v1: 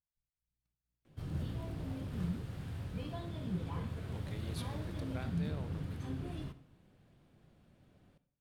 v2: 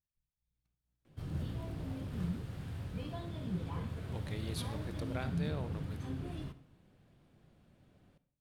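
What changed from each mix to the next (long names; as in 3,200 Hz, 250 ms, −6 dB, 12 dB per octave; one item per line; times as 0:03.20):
speech +5.0 dB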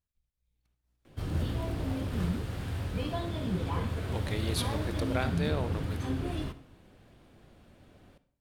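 speech +9.5 dB
background +10.5 dB
master: add parametric band 150 Hz −8 dB 0.9 octaves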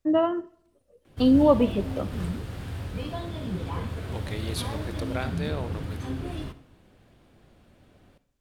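first voice: unmuted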